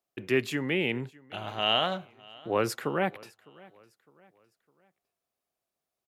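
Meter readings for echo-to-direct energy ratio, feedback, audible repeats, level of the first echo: −23.0 dB, 41%, 2, −24.0 dB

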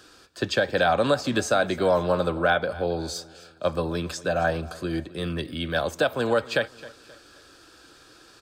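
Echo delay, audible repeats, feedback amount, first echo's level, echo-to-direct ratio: 265 ms, 2, 39%, −19.0 dB, −18.5 dB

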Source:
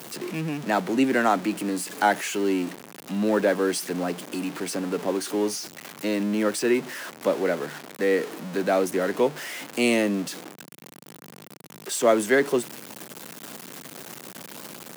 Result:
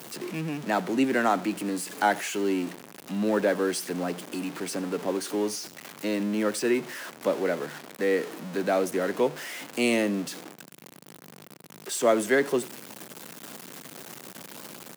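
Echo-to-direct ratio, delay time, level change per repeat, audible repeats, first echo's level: −21.0 dB, 85 ms, −12.5 dB, 2, −21.0 dB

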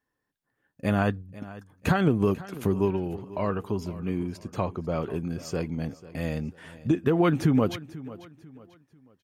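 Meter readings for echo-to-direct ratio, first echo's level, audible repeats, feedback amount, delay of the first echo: −17.0 dB, −17.5 dB, 2, 35%, 493 ms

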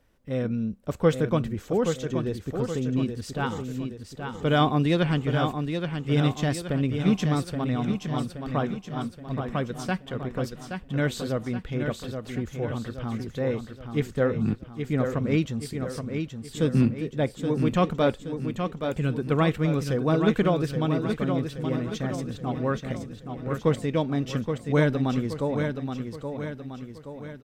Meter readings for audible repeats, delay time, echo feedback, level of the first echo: 5, 824 ms, 49%, −6.5 dB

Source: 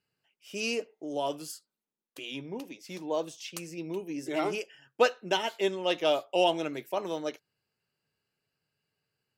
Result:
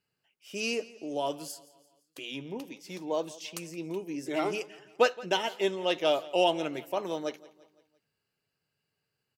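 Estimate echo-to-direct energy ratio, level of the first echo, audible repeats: −19.0 dB, −20.0 dB, 3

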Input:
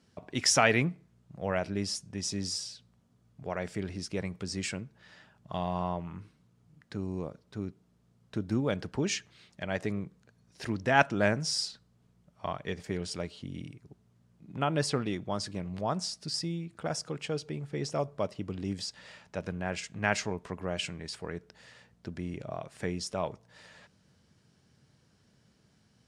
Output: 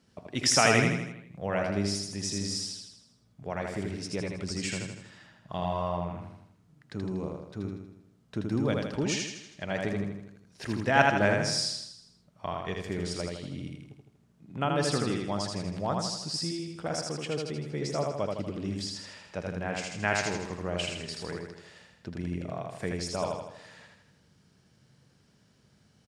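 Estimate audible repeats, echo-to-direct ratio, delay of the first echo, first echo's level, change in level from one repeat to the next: 6, −1.5 dB, 80 ms, −3.0 dB, −5.5 dB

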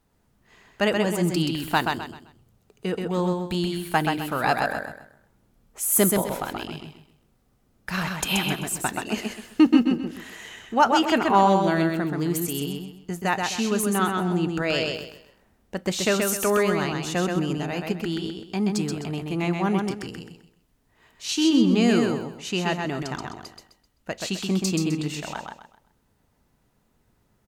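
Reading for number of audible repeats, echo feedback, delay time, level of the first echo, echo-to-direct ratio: 4, 31%, 129 ms, −4.0 dB, −3.5 dB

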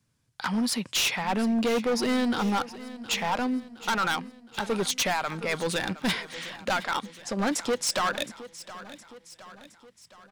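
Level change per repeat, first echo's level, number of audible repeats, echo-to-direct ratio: −5.5 dB, −16.0 dB, 4, −14.5 dB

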